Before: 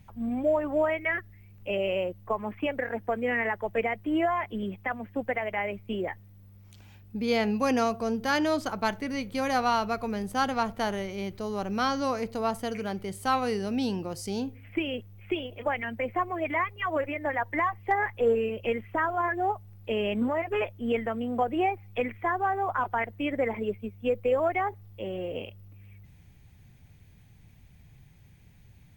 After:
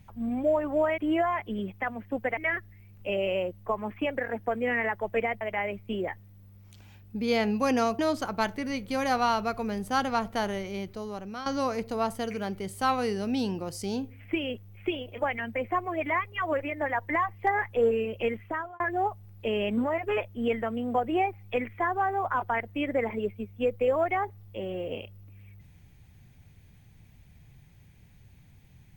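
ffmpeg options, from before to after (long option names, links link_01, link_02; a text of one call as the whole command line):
ffmpeg -i in.wav -filter_complex "[0:a]asplit=7[link_01][link_02][link_03][link_04][link_05][link_06][link_07];[link_01]atrim=end=0.982[link_08];[link_02]atrim=start=4.018:end=5.412[link_09];[link_03]atrim=start=0.978:end=4.022[link_10];[link_04]atrim=start=5.408:end=7.992[link_11];[link_05]atrim=start=8.428:end=11.9,asetpts=PTS-STARTPTS,afade=type=out:start_time=2.702:duration=0.77:silence=0.211349[link_12];[link_06]atrim=start=11.9:end=19.24,asetpts=PTS-STARTPTS,afade=type=in:duration=0.004:curve=hsin:silence=0.211349,afade=type=out:start_time=6.91:duration=0.43[link_13];[link_07]atrim=start=19.24,asetpts=PTS-STARTPTS,afade=type=in:duration=0.004:curve=hsin[link_14];[link_08][link_09]acrossfade=duration=0.004:curve1=hsin:curve2=hsin[link_15];[link_15][link_10]acrossfade=duration=0.004:curve1=hsin:curve2=hsin[link_16];[link_16][link_11]acrossfade=duration=0.004:curve1=hsin:curve2=hsin[link_17];[link_12][link_13][link_14]concat=n=3:v=0:a=1[link_18];[link_17][link_18]acrossfade=duration=0.004:curve1=hsin:curve2=hsin" out.wav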